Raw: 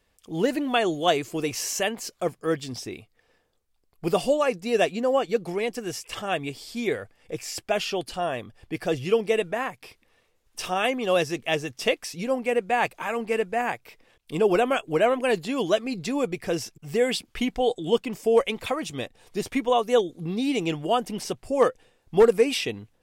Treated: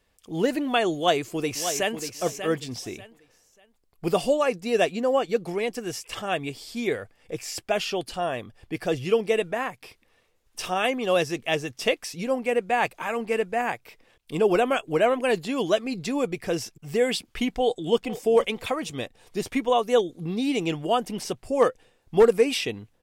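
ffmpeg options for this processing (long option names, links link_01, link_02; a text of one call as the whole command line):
ffmpeg -i in.wav -filter_complex "[0:a]asplit=2[link_01][link_02];[link_02]afade=type=in:start_time=0.96:duration=0.01,afade=type=out:start_time=2:duration=0.01,aecho=0:1:590|1180|1770:0.354813|0.0887033|0.0221758[link_03];[link_01][link_03]amix=inputs=2:normalize=0,asplit=2[link_04][link_05];[link_05]afade=type=in:start_time=17.49:duration=0.01,afade=type=out:start_time=18:duration=0.01,aecho=0:1:470|940:0.177828|0.0177828[link_06];[link_04][link_06]amix=inputs=2:normalize=0" out.wav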